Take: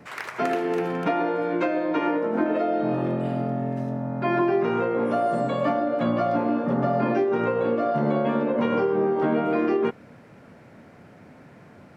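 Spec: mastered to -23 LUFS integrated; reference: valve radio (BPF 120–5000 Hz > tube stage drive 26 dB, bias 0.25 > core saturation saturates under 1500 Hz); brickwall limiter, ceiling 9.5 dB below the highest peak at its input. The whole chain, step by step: limiter -22.5 dBFS; BPF 120–5000 Hz; tube stage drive 26 dB, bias 0.25; core saturation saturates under 1500 Hz; gain +15 dB

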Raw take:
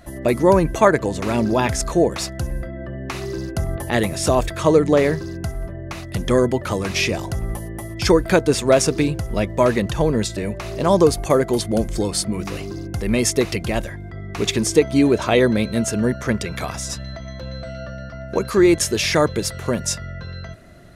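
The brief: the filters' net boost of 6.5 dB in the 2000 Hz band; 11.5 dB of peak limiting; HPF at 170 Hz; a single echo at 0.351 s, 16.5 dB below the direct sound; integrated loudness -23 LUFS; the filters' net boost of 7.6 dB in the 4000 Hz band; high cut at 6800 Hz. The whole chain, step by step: HPF 170 Hz; LPF 6800 Hz; bell 2000 Hz +5.5 dB; bell 4000 Hz +9 dB; limiter -8.5 dBFS; echo 0.351 s -16.5 dB; gain -1.5 dB

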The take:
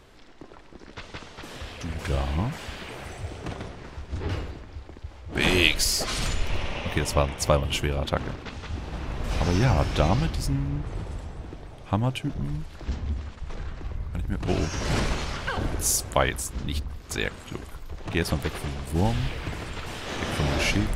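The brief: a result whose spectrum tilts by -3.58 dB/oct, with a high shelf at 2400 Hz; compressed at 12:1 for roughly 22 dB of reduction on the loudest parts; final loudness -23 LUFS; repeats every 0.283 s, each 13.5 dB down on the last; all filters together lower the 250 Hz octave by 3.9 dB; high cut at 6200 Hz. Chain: LPF 6200 Hz; bell 250 Hz -6 dB; high shelf 2400 Hz +7.5 dB; compressor 12:1, threshold -33 dBFS; feedback echo 0.283 s, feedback 21%, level -13.5 dB; gain +15 dB

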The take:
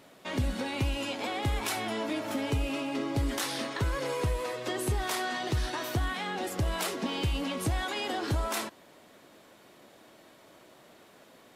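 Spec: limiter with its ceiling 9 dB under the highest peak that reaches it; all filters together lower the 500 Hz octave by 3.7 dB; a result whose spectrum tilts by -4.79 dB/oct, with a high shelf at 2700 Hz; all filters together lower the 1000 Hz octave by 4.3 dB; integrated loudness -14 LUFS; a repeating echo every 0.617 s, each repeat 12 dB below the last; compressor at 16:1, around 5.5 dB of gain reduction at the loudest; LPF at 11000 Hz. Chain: LPF 11000 Hz; bell 500 Hz -3.5 dB; bell 1000 Hz -3.5 dB; high shelf 2700 Hz -6.5 dB; compressor 16:1, threshold -30 dBFS; limiter -31.5 dBFS; feedback echo 0.617 s, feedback 25%, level -12 dB; gain +26 dB

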